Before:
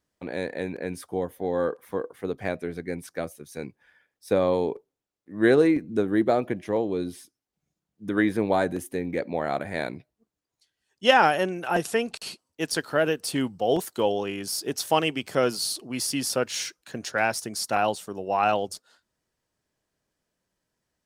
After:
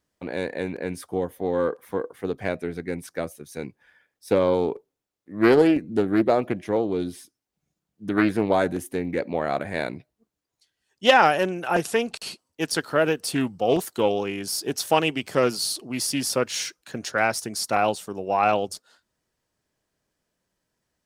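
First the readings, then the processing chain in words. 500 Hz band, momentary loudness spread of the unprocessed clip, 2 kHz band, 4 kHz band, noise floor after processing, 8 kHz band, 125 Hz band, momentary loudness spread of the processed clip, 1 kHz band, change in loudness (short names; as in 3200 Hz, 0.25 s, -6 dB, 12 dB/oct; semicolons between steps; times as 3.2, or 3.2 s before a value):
+2.0 dB, 13 LU, +1.5 dB, +1.5 dB, -83 dBFS, +1.5 dB, +2.0 dB, 13 LU, +2.0 dB, +2.0 dB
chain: Doppler distortion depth 0.25 ms; gain +2 dB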